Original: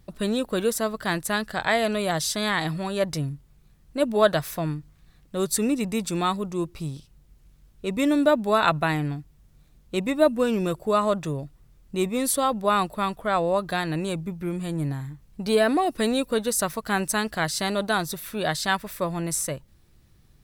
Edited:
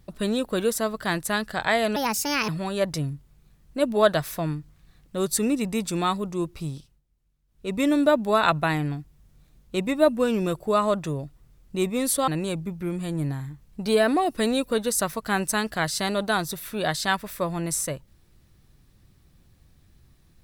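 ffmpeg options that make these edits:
ffmpeg -i in.wav -filter_complex "[0:a]asplit=6[link_01][link_02][link_03][link_04][link_05][link_06];[link_01]atrim=end=1.964[link_07];[link_02]atrim=start=1.96:end=2.68,asetpts=PTS-STARTPTS,asetrate=60417,aresample=44100[link_08];[link_03]atrim=start=2.676:end=7.21,asetpts=PTS-STARTPTS,afade=type=out:start_time=4.274:duration=0.26:silence=0.141254[link_09];[link_04]atrim=start=7.21:end=7.67,asetpts=PTS-STARTPTS,volume=-17dB[link_10];[link_05]atrim=start=7.67:end=12.472,asetpts=PTS-STARTPTS,afade=type=in:duration=0.26:silence=0.141254[link_11];[link_06]atrim=start=13.878[link_12];[link_07][link_08]acrossfade=duration=0.004:curve1=hsin:curve2=hsin[link_13];[link_09][link_10][link_11]concat=n=3:v=0:a=1[link_14];[link_13][link_14]acrossfade=duration=0.004:curve1=hsin:curve2=hsin[link_15];[link_15][link_12]acrossfade=duration=0.004:curve1=hsin:curve2=hsin" out.wav

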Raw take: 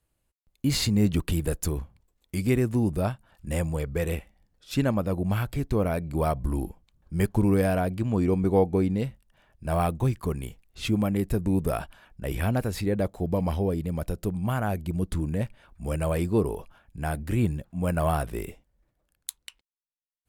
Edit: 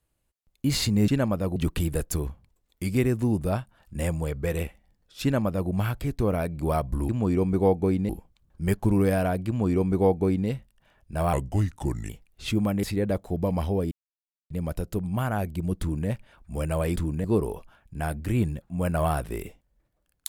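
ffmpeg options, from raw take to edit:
ffmpeg -i in.wav -filter_complex "[0:a]asplit=11[link_01][link_02][link_03][link_04][link_05][link_06][link_07][link_08][link_09][link_10][link_11];[link_01]atrim=end=1.082[link_12];[link_02]atrim=start=4.738:end=5.222[link_13];[link_03]atrim=start=1.078:end=6.612[link_14];[link_04]atrim=start=7.998:end=9.002[link_15];[link_05]atrim=start=6.608:end=9.854[link_16];[link_06]atrim=start=9.85:end=10.46,asetpts=PTS-STARTPTS,asetrate=35280,aresample=44100,atrim=end_sample=33626,asetpts=PTS-STARTPTS[link_17];[link_07]atrim=start=10.456:end=11.202[link_18];[link_08]atrim=start=12.728:end=13.81,asetpts=PTS-STARTPTS,afade=type=out:start_time=1.078:duration=0.004:curve=hsin,apad=pad_dur=0.59[link_19];[link_09]atrim=start=13.81:end=16.272,asetpts=PTS-STARTPTS,afade=type=in:duration=0.004:curve=hsin[link_20];[link_10]atrim=start=15.108:end=15.392[link_21];[link_11]atrim=start=16.268[link_22];[link_12][link_13]acrossfade=duration=0.004:curve1=hsin:curve2=hsin[link_23];[link_23][link_14]acrossfade=duration=0.004:curve1=hsin:curve2=hsin[link_24];[link_24][link_15]acrossfade=duration=0.004:curve1=hsin:curve2=hsin[link_25];[link_25][link_16]acrossfade=duration=0.004:curve1=hsin:curve2=hsin[link_26];[link_26][link_17]acrossfade=duration=0.004:curve1=hsin:curve2=hsin[link_27];[link_27][link_18]acrossfade=duration=0.004:curve1=hsin:curve2=hsin[link_28];[link_19][link_20]concat=n=2:v=0:a=1[link_29];[link_28][link_29]acrossfade=duration=0.004:curve1=hsin:curve2=hsin[link_30];[link_30][link_21]acrossfade=duration=0.004:curve1=hsin:curve2=hsin[link_31];[link_31][link_22]acrossfade=duration=0.004:curve1=hsin:curve2=hsin" out.wav

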